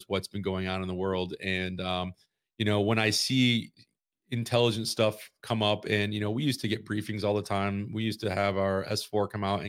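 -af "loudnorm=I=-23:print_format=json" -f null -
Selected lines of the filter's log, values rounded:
"input_i" : "-29.3",
"input_tp" : "-9.3",
"input_lra" : "2.6",
"input_thresh" : "-39.5",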